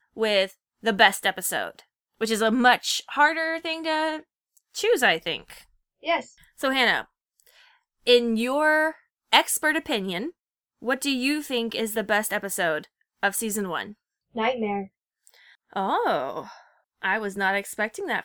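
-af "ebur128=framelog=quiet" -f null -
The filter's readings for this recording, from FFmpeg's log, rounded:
Integrated loudness:
  I:         -24.1 LUFS
  Threshold: -35.0 LUFS
Loudness range:
  LRA:         5.9 LU
  Threshold: -45.1 LUFS
  LRA low:   -28.7 LUFS
  LRA high:  -22.8 LUFS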